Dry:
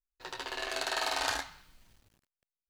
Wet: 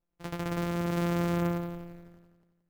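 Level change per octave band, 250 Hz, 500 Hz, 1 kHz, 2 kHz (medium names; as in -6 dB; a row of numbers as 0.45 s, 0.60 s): +21.5 dB, +7.0 dB, -1.0 dB, -5.5 dB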